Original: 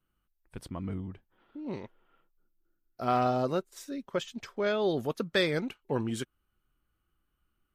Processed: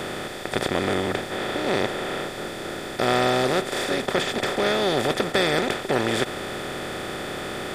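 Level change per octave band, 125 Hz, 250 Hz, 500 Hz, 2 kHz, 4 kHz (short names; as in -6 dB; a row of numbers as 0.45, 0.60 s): +6.0, +7.5, +8.5, +13.0, +13.5 dB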